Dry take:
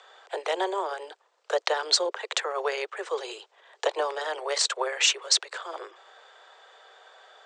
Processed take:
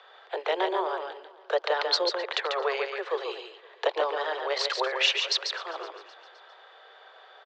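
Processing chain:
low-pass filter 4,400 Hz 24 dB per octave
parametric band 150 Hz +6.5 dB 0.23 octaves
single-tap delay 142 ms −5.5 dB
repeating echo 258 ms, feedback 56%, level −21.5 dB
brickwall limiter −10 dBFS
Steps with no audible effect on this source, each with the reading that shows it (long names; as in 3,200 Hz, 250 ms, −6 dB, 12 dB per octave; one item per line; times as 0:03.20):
parametric band 150 Hz: nothing at its input below 290 Hz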